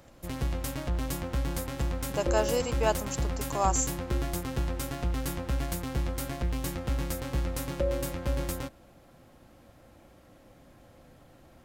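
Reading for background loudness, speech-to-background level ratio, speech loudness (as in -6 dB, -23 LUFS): -33.0 LUFS, 2.0 dB, -31.0 LUFS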